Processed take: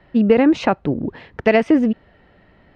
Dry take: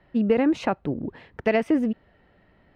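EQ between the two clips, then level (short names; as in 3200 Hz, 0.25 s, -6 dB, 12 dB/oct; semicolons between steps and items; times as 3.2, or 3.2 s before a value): Chebyshev low-pass 5600 Hz, order 2; +8.0 dB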